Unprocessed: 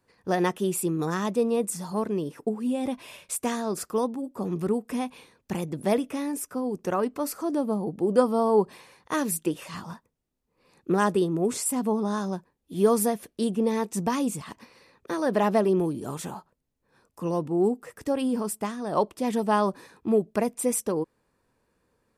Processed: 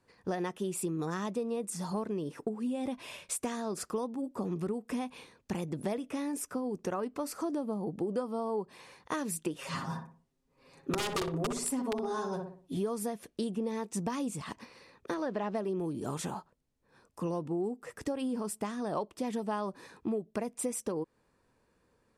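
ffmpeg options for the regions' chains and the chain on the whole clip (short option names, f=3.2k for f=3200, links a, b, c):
-filter_complex "[0:a]asettb=1/sr,asplit=3[a][b][c];[a]atrim=end=9.584[d];[b]atrim=start=9.58:end=12.77,asetpts=PTS-STARTPTS,afade=t=in:d=0.004:c=qsin,afade=t=out:st=3.186:d=0.004:c=qsin,aecho=1:1:7.4:0.82,atrim=end_sample=140679,aeval=exprs='(mod(5.62*val(0)+1,2)-1)/5.62':c=same,asplit=2[e][f];[f]adelay=61,lowpass=f=1.2k:p=1,volume=-4dB,asplit=2[g][h];[h]adelay=61,lowpass=f=1.2k:p=1,volume=0.41,asplit=2[i][j];[j]adelay=61,lowpass=f=1.2k:p=1,volume=0.41,asplit=2[k][l];[l]adelay=61,lowpass=f=1.2k:p=1,volume=0.41,asplit=2[m][n];[n]adelay=61,lowpass=f=1.2k:p=1,volume=0.41[o];[e][g][i][k][m][o]amix=inputs=6:normalize=0,atrim=end_sample=140679[p];[c]atrim=start=12.766[q];[d][p]acrossfade=d=0.004:c1=hsin:c2=qsin[r];[r][q]acrossfade=d=0.004:c1=qsin:c2=hsin,asettb=1/sr,asplit=3[s][t][u];[s]atrim=end=15.144[v];[t]atrim=start=15.14:end=15.55,asetpts=PTS-STARTPTS,afade=t=in:d=0.004:c=qsin,afade=t=out:st=0.406:d=0.004:c=qsin,lowpass=5k,aeval=exprs='sgn(val(0))*max(abs(val(0))-0.002,0)':c=same[w];[u]atrim=start=15.546[x];[v][w]acrossfade=d=0.004:c1=hsin:c2=qsin[y];[y][x]acrossfade=d=0.004:c1=qsin:c2=hsin,lowpass=10k,acompressor=threshold=-31dB:ratio=6"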